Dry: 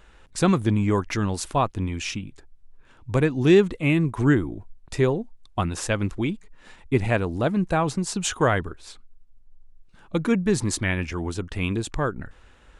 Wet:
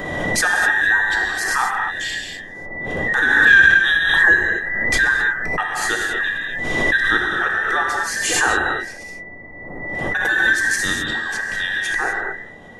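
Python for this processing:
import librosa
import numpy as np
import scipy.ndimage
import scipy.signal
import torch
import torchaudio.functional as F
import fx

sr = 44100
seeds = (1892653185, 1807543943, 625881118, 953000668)

y = fx.band_invert(x, sr, width_hz=2000)
y = y + 0.42 * np.pad(y, (int(2.5 * sr / 1000.0), 0))[:len(y)]
y = fx.dmg_noise_band(y, sr, seeds[0], low_hz=51.0, high_hz=750.0, level_db=-48.0)
y = fx.rev_gated(y, sr, seeds[1], gate_ms=280, shape='flat', drr_db=-0.5)
y = fx.pre_swell(y, sr, db_per_s=28.0)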